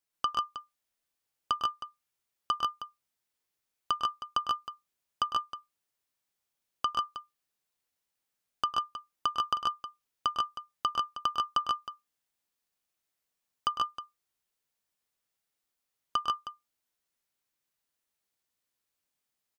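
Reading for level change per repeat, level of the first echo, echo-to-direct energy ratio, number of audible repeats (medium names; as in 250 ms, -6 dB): no regular repeats, -12.0 dB, 0.0 dB, 3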